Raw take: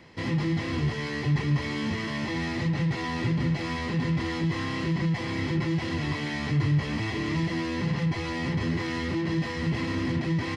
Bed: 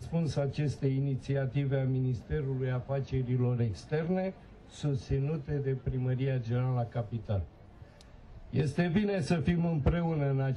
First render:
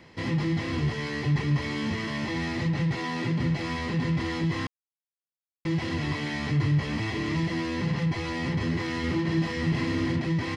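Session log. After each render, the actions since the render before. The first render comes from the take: 2.99–3.40 s: high-pass 130 Hz 24 dB/octave; 4.67–5.65 s: mute; 8.99–10.16 s: doubling 49 ms -6 dB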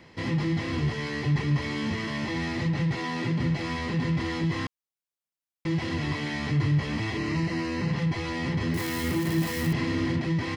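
7.17–7.92 s: Butterworth band-stop 3.4 kHz, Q 7.2; 8.74–9.73 s: zero-crossing glitches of -28 dBFS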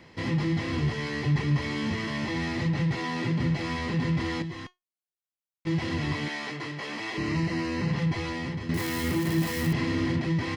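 4.42–5.67 s: feedback comb 360 Hz, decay 0.17 s, mix 70%; 6.28–7.18 s: high-pass 400 Hz; 8.23–8.69 s: fade out, to -9.5 dB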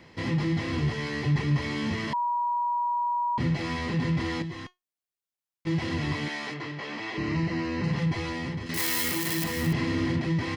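2.13–3.38 s: bleep 962 Hz -24 dBFS; 6.54–7.84 s: distance through air 82 m; 8.66–9.44 s: tilt EQ +3 dB/octave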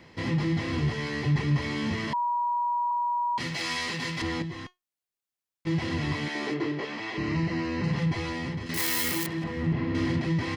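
2.91–4.22 s: tilt EQ +4 dB/octave; 6.35–6.85 s: peaking EQ 360 Hz +13.5 dB 0.93 oct; 9.26–9.95 s: tape spacing loss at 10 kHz 31 dB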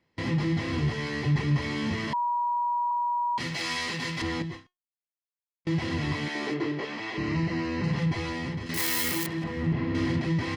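gate with hold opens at -28 dBFS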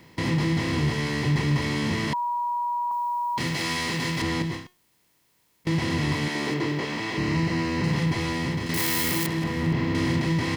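spectral levelling over time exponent 0.6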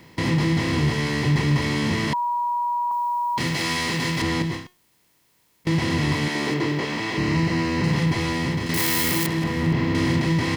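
trim +3 dB

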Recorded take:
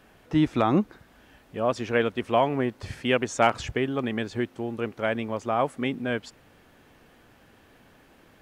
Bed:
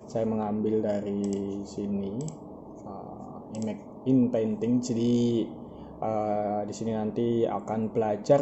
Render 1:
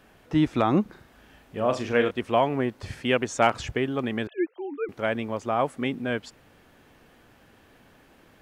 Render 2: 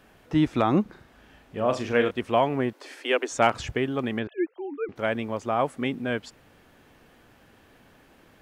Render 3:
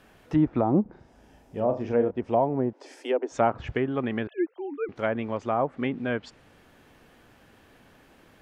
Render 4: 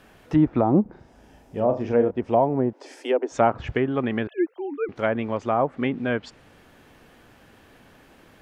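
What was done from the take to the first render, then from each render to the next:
0.82–2.11 s: flutter echo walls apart 6.5 m, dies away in 0.3 s; 4.27–4.89 s: formants replaced by sine waves
0.82–1.68 s: treble shelf 9.1 kHz -6.5 dB; 2.73–3.32 s: steep high-pass 270 Hz 96 dB/octave; 4.19–4.96 s: distance through air 160 m
low-pass that closes with the level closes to 1 kHz, closed at -20 dBFS; 0.61–3.34 s: time-frequency box 1–4.7 kHz -8 dB
trim +3.5 dB

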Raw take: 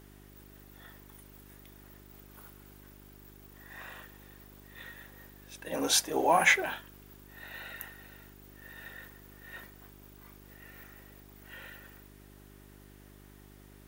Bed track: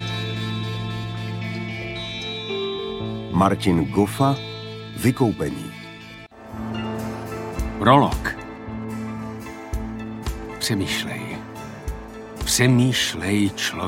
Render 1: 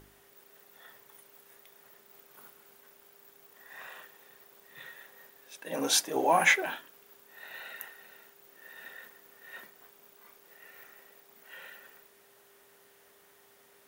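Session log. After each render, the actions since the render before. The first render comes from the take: de-hum 50 Hz, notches 7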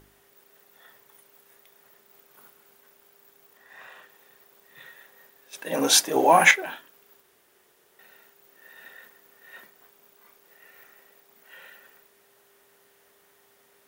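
3.57–4.10 s: treble shelf 8.5 kHz -8 dB; 5.53–6.51 s: gain +7.5 dB; 7.22–7.99 s: room tone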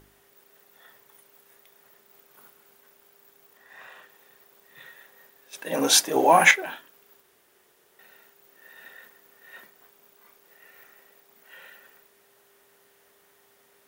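no audible change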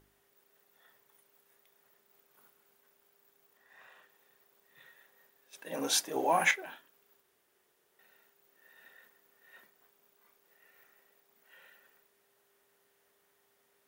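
trim -11 dB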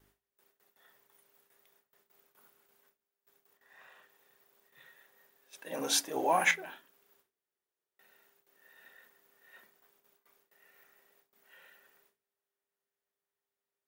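gate with hold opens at -57 dBFS; de-hum 55.99 Hz, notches 8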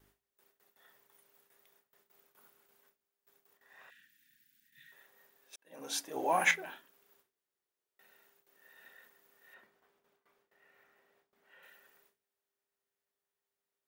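3.90–4.92 s: Chebyshev band-stop 290–1600 Hz, order 4; 5.56–6.55 s: fade in; 9.54–11.63 s: low-pass 2.2 kHz 6 dB/octave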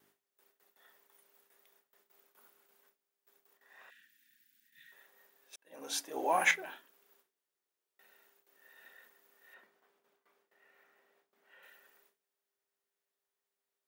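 high-pass 220 Hz 12 dB/octave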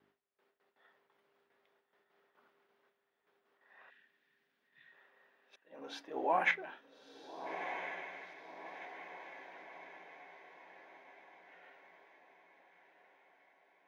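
distance through air 310 m; echo that smears into a reverb 1347 ms, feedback 50%, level -8 dB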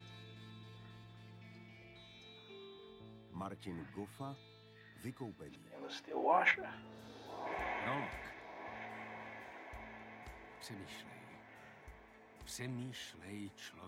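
add bed track -28 dB

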